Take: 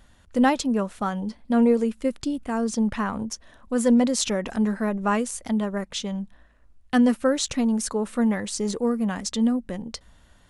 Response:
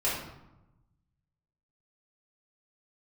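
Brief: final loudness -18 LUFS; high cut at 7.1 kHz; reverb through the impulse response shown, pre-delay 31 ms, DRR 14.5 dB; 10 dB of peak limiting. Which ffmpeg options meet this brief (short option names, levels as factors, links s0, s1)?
-filter_complex "[0:a]lowpass=7100,alimiter=limit=0.1:level=0:latency=1,asplit=2[s0][s1];[1:a]atrim=start_sample=2205,adelay=31[s2];[s1][s2]afir=irnorm=-1:irlink=0,volume=0.0631[s3];[s0][s3]amix=inputs=2:normalize=0,volume=3.55"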